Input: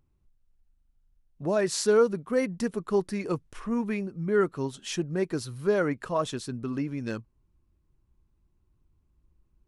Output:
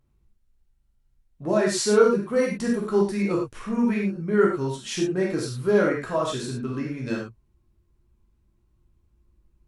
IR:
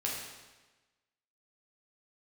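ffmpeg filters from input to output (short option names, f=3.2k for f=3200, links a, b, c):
-filter_complex "[1:a]atrim=start_sample=2205,atrim=end_sample=4410,asetrate=36603,aresample=44100[a];[0:a][a]afir=irnorm=-1:irlink=0"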